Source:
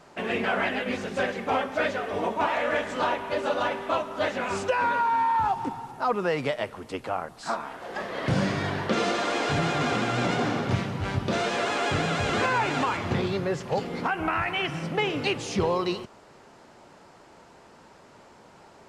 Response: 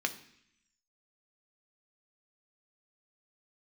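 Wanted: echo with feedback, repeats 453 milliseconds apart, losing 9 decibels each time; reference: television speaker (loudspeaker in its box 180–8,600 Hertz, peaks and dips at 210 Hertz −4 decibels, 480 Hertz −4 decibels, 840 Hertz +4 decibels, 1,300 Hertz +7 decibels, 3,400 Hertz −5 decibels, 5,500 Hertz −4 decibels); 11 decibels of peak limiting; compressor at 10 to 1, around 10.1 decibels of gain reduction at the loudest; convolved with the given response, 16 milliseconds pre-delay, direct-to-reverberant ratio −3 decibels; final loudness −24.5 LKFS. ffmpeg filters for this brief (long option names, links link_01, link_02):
-filter_complex "[0:a]acompressor=threshold=-31dB:ratio=10,alimiter=level_in=6.5dB:limit=-24dB:level=0:latency=1,volume=-6.5dB,aecho=1:1:453|906|1359|1812:0.355|0.124|0.0435|0.0152,asplit=2[link_01][link_02];[1:a]atrim=start_sample=2205,adelay=16[link_03];[link_02][link_03]afir=irnorm=-1:irlink=0,volume=-2dB[link_04];[link_01][link_04]amix=inputs=2:normalize=0,highpass=frequency=180:width=0.5412,highpass=frequency=180:width=1.3066,equalizer=frequency=210:width_type=q:width=4:gain=-4,equalizer=frequency=480:width_type=q:width=4:gain=-4,equalizer=frequency=840:width_type=q:width=4:gain=4,equalizer=frequency=1300:width_type=q:width=4:gain=7,equalizer=frequency=3400:width_type=q:width=4:gain=-5,equalizer=frequency=5500:width_type=q:width=4:gain=-4,lowpass=frequency=8600:width=0.5412,lowpass=frequency=8600:width=1.3066,volume=8.5dB"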